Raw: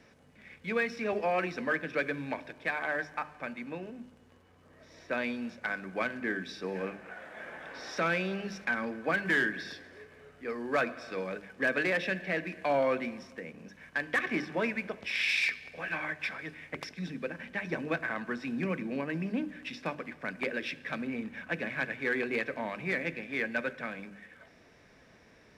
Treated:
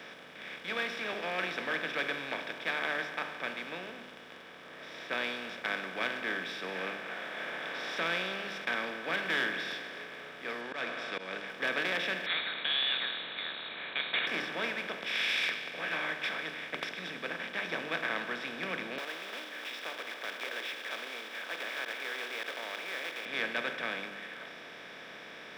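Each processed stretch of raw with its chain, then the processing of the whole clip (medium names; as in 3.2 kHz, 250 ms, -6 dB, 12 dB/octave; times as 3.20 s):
10.61–11.48 s: low-pass 7.6 kHz + slow attack 210 ms
12.26–14.27 s: zero-crossing glitches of -33.5 dBFS + frequency inversion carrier 4 kHz
18.98–23.26 s: block-companded coder 3-bit + compression 2:1, threshold -44 dBFS + high-pass 410 Hz 24 dB/octave
whole clip: spectral levelling over time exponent 0.4; bass shelf 390 Hz -8 dB; three bands expanded up and down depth 40%; trim -8.5 dB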